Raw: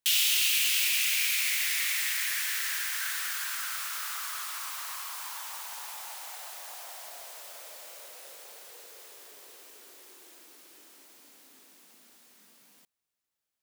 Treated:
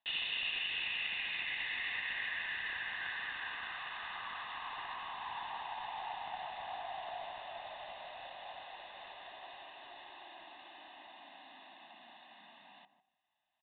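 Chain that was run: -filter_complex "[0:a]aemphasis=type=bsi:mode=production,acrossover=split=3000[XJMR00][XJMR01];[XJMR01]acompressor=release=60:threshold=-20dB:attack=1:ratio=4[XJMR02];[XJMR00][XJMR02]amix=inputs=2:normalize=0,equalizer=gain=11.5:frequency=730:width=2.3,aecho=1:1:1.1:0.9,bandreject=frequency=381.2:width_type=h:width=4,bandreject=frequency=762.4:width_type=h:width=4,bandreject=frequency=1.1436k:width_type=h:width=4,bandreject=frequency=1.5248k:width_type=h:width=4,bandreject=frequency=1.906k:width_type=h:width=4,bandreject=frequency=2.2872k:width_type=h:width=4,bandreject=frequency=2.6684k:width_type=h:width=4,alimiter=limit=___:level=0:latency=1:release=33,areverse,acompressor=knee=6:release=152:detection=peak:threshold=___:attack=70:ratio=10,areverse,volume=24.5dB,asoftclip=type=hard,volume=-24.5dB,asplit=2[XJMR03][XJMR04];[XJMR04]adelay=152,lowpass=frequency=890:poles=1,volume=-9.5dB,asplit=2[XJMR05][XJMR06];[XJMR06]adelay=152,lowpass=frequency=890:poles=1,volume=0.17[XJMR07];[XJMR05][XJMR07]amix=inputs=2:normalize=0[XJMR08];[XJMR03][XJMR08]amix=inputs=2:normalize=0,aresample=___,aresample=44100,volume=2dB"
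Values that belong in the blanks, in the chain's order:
-10dB, -31dB, 8000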